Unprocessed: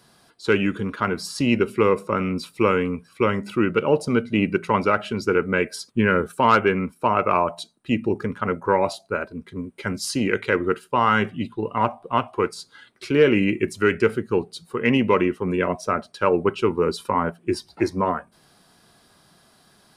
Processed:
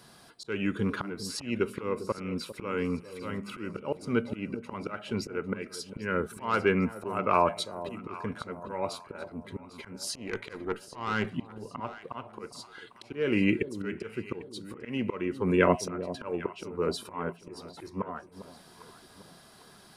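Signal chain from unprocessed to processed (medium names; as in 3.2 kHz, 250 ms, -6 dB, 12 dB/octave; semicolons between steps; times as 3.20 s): 10.15–11.27 s: valve stage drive 14 dB, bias 0.5; slow attack 599 ms; echo whose repeats swap between lows and highs 400 ms, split 830 Hz, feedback 63%, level -12 dB; trim +1.5 dB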